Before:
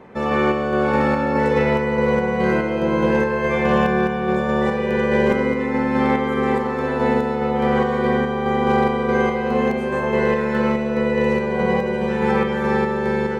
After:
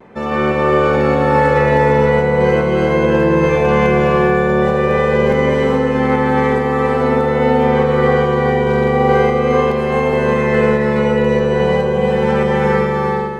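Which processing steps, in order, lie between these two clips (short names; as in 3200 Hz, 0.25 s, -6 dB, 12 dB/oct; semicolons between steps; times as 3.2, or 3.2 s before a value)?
ending faded out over 0.77 s; non-linear reverb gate 0.46 s rising, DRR -2 dB; vibrato 0.43 Hz 18 cents; gain +1 dB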